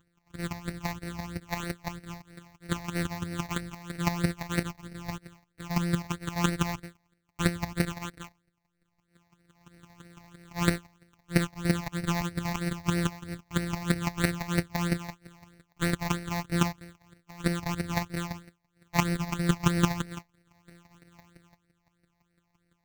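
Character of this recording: a buzz of ramps at a fixed pitch in blocks of 256 samples; chopped level 5.9 Hz, depth 65%, duty 10%; aliases and images of a low sample rate 5000 Hz, jitter 0%; phasing stages 8, 3.1 Hz, lowest notch 400–1000 Hz

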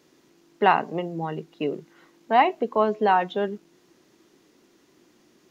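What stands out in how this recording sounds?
noise floor -61 dBFS; spectral tilt -3.5 dB/oct

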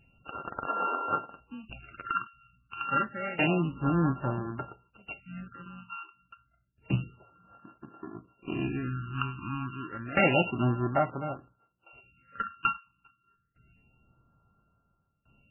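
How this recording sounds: a buzz of ramps at a fixed pitch in blocks of 32 samples; phasing stages 8, 0.29 Hz, lowest notch 560–3100 Hz; tremolo saw down 0.59 Hz, depth 90%; MP3

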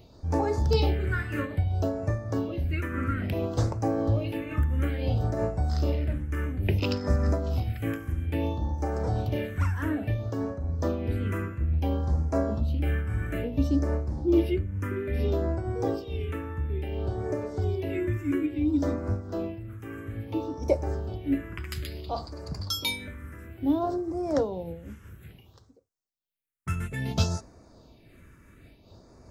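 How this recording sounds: phasing stages 4, 0.59 Hz, lowest notch 690–3100 Hz; noise-modulated level

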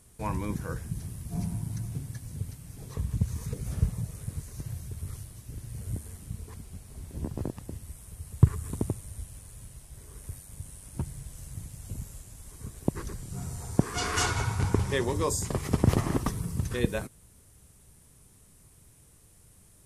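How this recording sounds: noise floor -57 dBFS; spectral tilt -5.5 dB/oct

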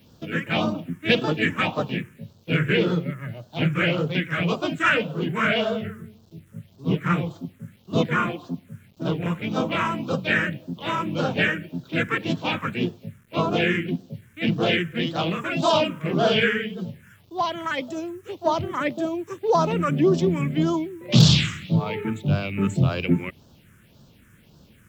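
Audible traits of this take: a quantiser's noise floor 10-bit, dither none; phasing stages 4, 1.8 Hz, lowest notch 700–2100 Hz; Vorbis

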